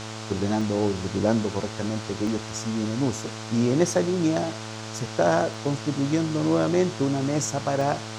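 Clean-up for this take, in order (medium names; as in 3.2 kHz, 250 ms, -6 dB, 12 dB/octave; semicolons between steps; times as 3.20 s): de-hum 109.8 Hz, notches 14; interpolate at 0.61/2.27/5.54/7.81 s, 3.1 ms; noise print and reduce 30 dB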